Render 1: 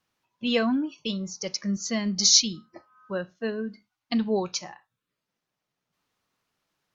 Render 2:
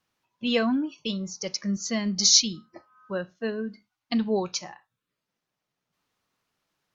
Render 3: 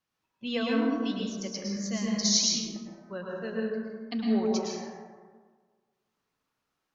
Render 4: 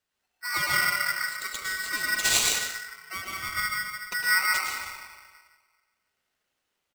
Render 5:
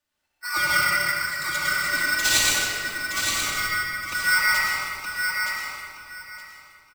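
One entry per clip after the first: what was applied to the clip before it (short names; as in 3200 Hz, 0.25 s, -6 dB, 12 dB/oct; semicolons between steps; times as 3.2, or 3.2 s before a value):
nothing audible
plate-style reverb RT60 1.6 s, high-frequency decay 0.4×, pre-delay 95 ms, DRR -3.5 dB; gain -8 dB
echo 0.167 s -12 dB; polarity switched at an audio rate 1700 Hz; gain +1.5 dB
on a send: feedback echo 0.919 s, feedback 20%, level -5.5 dB; on the sum: shoebox room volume 2900 m³, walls mixed, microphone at 2.5 m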